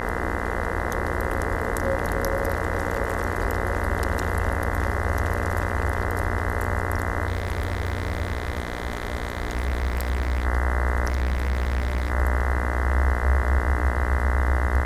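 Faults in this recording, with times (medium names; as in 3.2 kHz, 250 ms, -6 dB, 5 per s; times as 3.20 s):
buzz 60 Hz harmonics 34 -29 dBFS
7.27–10.45 s: clipped -20.5 dBFS
11.08–12.10 s: clipped -20.5 dBFS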